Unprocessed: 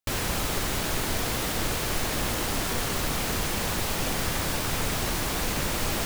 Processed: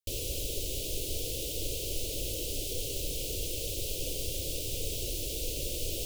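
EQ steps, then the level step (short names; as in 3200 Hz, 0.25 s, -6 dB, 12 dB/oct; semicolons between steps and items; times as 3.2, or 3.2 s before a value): elliptic band-stop 540–2800 Hz, stop band 50 dB; fixed phaser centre 490 Hz, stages 4; -4.0 dB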